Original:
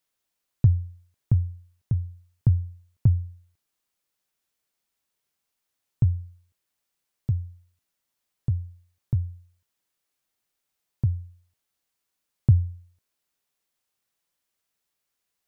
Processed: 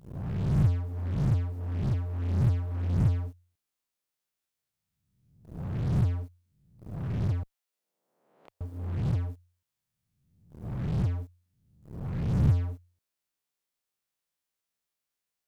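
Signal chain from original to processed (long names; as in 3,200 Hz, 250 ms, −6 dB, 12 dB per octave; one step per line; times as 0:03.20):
peak hold with a rise ahead of every peak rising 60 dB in 1.07 s
0:07.43–0:08.61: high-pass filter 530 Hz 24 dB per octave
in parallel at −11.5 dB: fuzz pedal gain 42 dB, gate −42 dBFS
on the sum: level −9 dB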